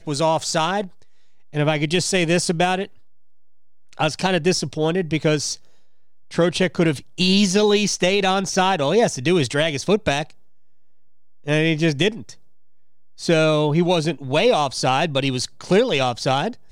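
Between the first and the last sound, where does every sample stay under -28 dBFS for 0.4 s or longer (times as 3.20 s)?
0.86–1.54 s
2.85–3.93 s
5.54–6.32 s
10.23–11.47 s
12.30–13.21 s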